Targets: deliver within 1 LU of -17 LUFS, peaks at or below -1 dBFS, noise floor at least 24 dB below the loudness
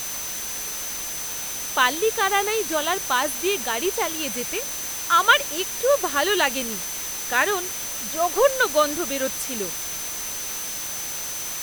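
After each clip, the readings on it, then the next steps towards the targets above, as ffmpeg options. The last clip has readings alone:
steady tone 6.1 kHz; tone level -32 dBFS; noise floor -31 dBFS; noise floor target -47 dBFS; loudness -23.0 LUFS; peak level -3.5 dBFS; loudness target -17.0 LUFS
-> -af "bandreject=f=6100:w=30"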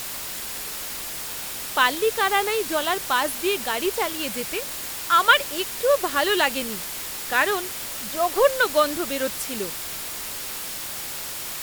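steady tone not found; noise floor -33 dBFS; noise floor target -48 dBFS
-> -af "afftdn=nr=15:nf=-33"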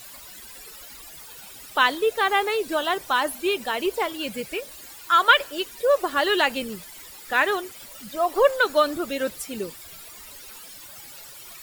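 noise floor -43 dBFS; noise floor target -47 dBFS
-> -af "afftdn=nr=6:nf=-43"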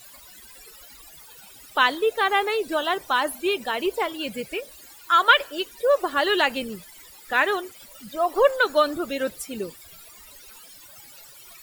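noise floor -47 dBFS; loudness -23.0 LUFS; peak level -3.5 dBFS; loudness target -17.0 LUFS
-> -af "volume=2,alimiter=limit=0.891:level=0:latency=1"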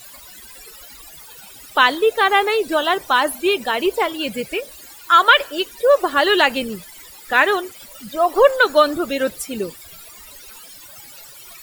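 loudness -17.0 LUFS; peak level -1.0 dBFS; noise floor -41 dBFS

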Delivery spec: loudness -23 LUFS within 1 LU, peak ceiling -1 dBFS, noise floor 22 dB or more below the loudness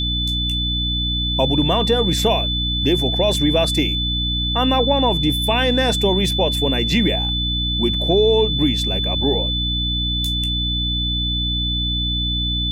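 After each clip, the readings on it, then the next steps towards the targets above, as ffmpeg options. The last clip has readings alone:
hum 60 Hz; highest harmonic 300 Hz; hum level -21 dBFS; steady tone 3.5 kHz; tone level -21 dBFS; loudness -18.0 LUFS; peak level -5.0 dBFS; loudness target -23.0 LUFS
-> -af "bandreject=f=60:t=h:w=4,bandreject=f=120:t=h:w=4,bandreject=f=180:t=h:w=4,bandreject=f=240:t=h:w=4,bandreject=f=300:t=h:w=4"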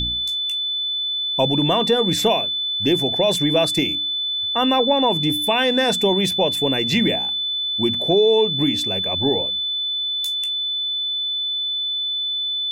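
hum not found; steady tone 3.5 kHz; tone level -21 dBFS
-> -af "bandreject=f=3500:w=30"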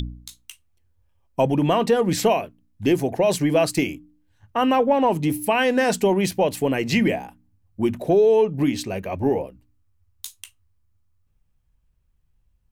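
steady tone not found; loudness -21.0 LUFS; peak level -7.5 dBFS; loudness target -23.0 LUFS
-> -af "volume=0.794"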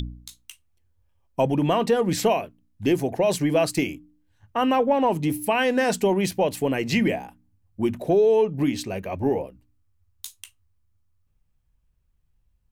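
loudness -23.0 LUFS; peak level -9.5 dBFS; noise floor -67 dBFS

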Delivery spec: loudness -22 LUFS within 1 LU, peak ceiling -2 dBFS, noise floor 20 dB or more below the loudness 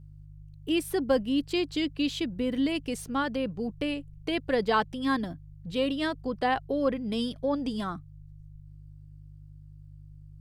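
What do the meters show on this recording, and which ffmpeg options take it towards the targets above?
hum 50 Hz; highest harmonic 150 Hz; hum level -46 dBFS; loudness -29.5 LUFS; peak level -14.0 dBFS; loudness target -22.0 LUFS
-> -af "bandreject=f=50:t=h:w=4,bandreject=f=100:t=h:w=4,bandreject=f=150:t=h:w=4"
-af "volume=2.37"

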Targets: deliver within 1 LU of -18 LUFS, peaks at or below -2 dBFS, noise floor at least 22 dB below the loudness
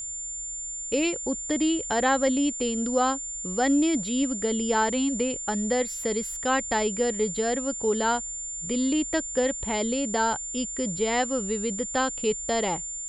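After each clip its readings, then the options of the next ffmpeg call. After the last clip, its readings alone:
steady tone 7.2 kHz; tone level -32 dBFS; loudness -26.0 LUFS; peak level -11.5 dBFS; loudness target -18.0 LUFS
-> -af "bandreject=f=7200:w=30"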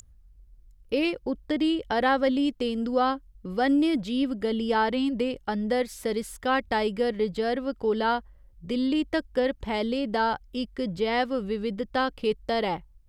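steady tone not found; loudness -27.0 LUFS; peak level -12.0 dBFS; loudness target -18.0 LUFS
-> -af "volume=2.82"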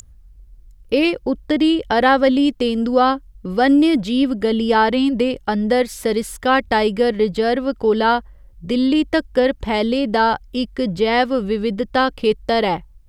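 loudness -18.0 LUFS; peak level -3.0 dBFS; noise floor -46 dBFS

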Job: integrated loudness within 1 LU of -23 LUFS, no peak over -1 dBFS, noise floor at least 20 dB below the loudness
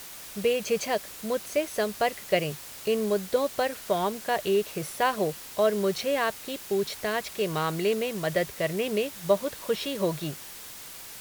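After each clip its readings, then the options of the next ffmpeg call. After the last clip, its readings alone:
noise floor -43 dBFS; noise floor target -48 dBFS; loudness -28.0 LUFS; peak level -10.0 dBFS; loudness target -23.0 LUFS
-> -af "afftdn=nr=6:nf=-43"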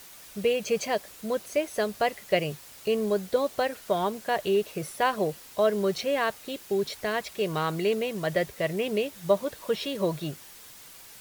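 noise floor -48 dBFS; noise floor target -49 dBFS
-> -af "afftdn=nr=6:nf=-48"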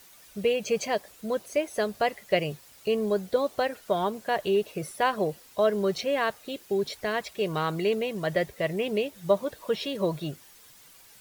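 noise floor -54 dBFS; loudness -28.5 LUFS; peak level -10.0 dBFS; loudness target -23.0 LUFS
-> -af "volume=1.88"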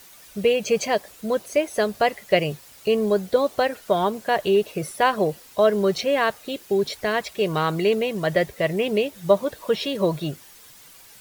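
loudness -23.0 LUFS; peak level -4.5 dBFS; noise floor -48 dBFS

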